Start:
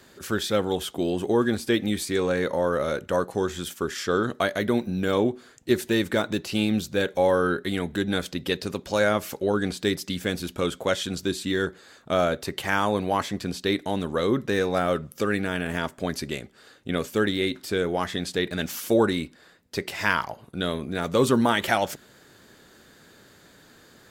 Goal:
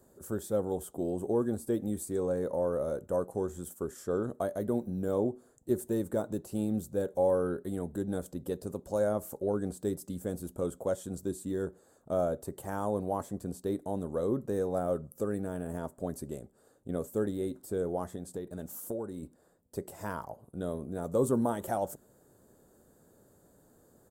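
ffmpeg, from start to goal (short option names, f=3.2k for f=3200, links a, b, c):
-filter_complex "[0:a]firequalizer=gain_entry='entry(340,0);entry(550,3);entry(2200,-23);entry(5000,-15);entry(8000,2)':delay=0.05:min_phase=1,asettb=1/sr,asplit=3[a][b][c];[a]atrim=end=18.144[d];[b]atrim=start=18.14:end=19.23,asetpts=PTS-STARTPTS,afade=t=in:d=0.004:c=qsin,afade=t=out:st=1.086:d=0.004:c=qsin,acompressor=threshold=-29dB:ratio=3[e];[c]atrim=start=19.226[f];[d][e]acrossfade=d=0.004:c1=hsin:c2=qsin[g];[g][f]acrossfade=d=0.004:c1=qsin:c2=hsin,lowshelf=f=79:g=5,volume=-8dB"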